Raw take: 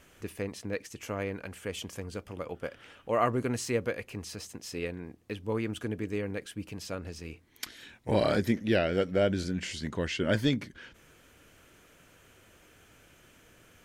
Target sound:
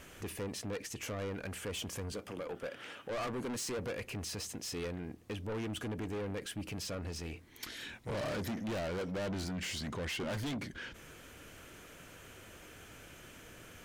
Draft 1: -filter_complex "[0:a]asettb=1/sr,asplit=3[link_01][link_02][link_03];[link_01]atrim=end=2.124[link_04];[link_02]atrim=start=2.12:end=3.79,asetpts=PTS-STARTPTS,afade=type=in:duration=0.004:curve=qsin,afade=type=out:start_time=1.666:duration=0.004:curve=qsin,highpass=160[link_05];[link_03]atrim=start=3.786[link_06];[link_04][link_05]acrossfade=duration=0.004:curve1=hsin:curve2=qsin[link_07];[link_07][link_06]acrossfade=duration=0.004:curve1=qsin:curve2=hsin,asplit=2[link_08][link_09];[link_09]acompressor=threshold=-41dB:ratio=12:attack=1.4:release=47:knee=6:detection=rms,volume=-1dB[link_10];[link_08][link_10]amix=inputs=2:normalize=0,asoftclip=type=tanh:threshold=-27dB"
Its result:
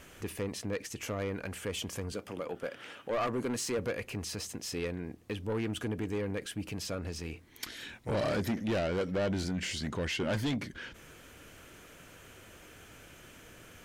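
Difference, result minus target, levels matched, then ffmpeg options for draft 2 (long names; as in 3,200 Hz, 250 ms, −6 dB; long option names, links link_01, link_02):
soft clipping: distortion −5 dB
-filter_complex "[0:a]asettb=1/sr,asplit=3[link_01][link_02][link_03];[link_01]atrim=end=2.124[link_04];[link_02]atrim=start=2.12:end=3.79,asetpts=PTS-STARTPTS,afade=type=in:duration=0.004:curve=qsin,afade=type=out:start_time=1.666:duration=0.004:curve=qsin,highpass=160[link_05];[link_03]atrim=start=3.786[link_06];[link_04][link_05]acrossfade=duration=0.004:curve1=hsin:curve2=qsin[link_07];[link_07][link_06]acrossfade=duration=0.004:curve1=qsin:curve2=hsin,asplit=2[link_08][link_09];[link_09]acompressor=threshold=-41dB:ratio=12:attack=1.4:release=47:knee=6:detection=rms,volume=-1dB[link_10];[link_08][link_10]amix=inputs=2:normalize=0,asoftclip=type=tanh:threshold=-35dB"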